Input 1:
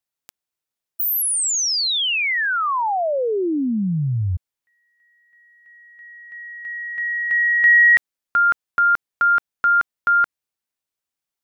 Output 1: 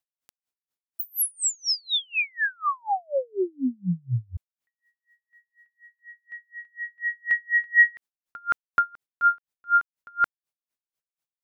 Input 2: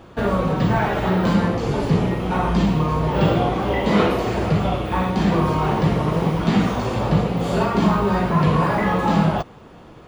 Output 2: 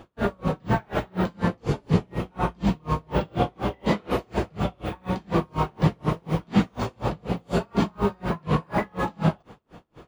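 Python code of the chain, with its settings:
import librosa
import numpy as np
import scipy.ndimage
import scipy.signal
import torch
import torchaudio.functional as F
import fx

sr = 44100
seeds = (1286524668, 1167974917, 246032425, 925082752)

y = x * 10.0 ** (-37 * (0.5 - 0.5 * np.cos(2.0 * np.pi * 4.1 * np.arange(len(x)) / sr)) / 20.0)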